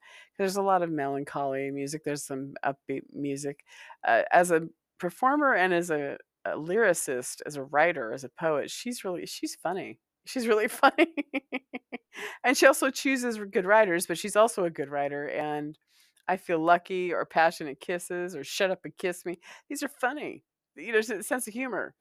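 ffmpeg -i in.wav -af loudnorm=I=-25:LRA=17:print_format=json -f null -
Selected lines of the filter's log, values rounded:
"input_i" : "-28.2",
"input_tp" : "-7.2",
"input_lra" : "6.6",
"input_thresh" : "-38.7",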